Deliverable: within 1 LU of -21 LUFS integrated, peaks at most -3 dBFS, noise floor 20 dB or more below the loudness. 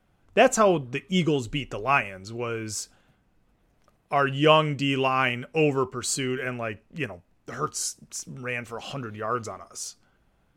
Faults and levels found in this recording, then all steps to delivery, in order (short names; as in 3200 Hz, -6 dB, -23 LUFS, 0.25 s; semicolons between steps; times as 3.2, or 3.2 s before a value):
loudness -26.0 LUFS; peak -5.5 dBFS; loudness target -21.0 LUFS
-> gain +5 dB; limiter -3 dBFS